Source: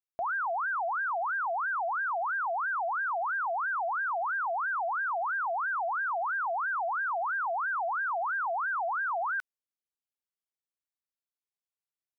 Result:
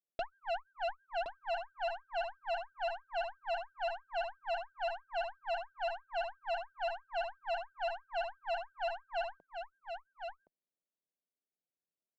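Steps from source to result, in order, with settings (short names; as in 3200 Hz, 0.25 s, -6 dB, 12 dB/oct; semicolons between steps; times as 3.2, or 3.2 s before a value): elliptic band-pass 160–650 Hz, stop band 40 dB; in parallel at -2.5 dB: compressor 8:1, threshold -42 dBFS, peak gain reduction 9.5 dB; on the sum: added harmonics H 6 -12 dB, 7 -39 dB, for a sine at -26 dBFS; soft clip -27.5 dBFS, distortion -20 dB; echo 1.068 s -7 dB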